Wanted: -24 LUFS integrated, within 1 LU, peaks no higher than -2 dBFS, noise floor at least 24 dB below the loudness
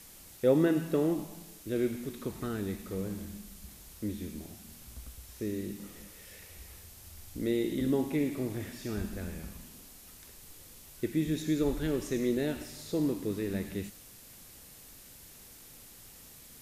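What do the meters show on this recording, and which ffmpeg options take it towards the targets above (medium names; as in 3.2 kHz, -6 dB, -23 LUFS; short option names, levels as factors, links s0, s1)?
noise floor -53 dBFS; noise floor target -57 dBFS; loudness -33.0 LUFS; peak level -13.5 dBFS; loudness target -24.0 LUFS
-> -af "afftdn=nr=6:nf=-53"
-af "volume=2.82"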